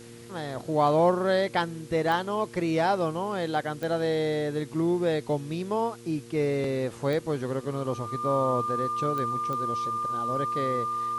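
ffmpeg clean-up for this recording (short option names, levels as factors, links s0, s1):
-af "adeclick=t=4,bandreject=f=117.2:t=h:w=4,bandreject=f=234.4:t=h:w=4,bandreject=f=351.6:t=h:w=4,bandreject=f=468.8:t=h:w=4,bandreject=f=1200:w=30,afwtdn=0.0025"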